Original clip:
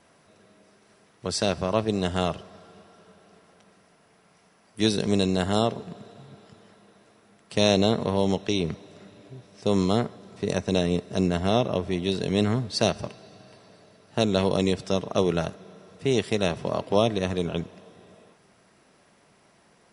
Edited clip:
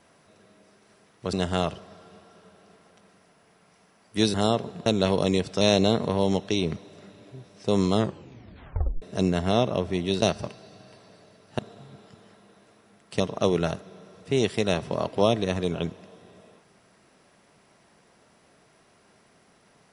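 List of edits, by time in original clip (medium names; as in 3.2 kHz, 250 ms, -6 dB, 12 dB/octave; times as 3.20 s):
1.33–1.96 s: delete
4.97–5.46 s: delete
5.98–7.59 s: swap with 14.19–14.94 s
9.92 s: tape stop 1.08 s
12.20–12.82 s: delete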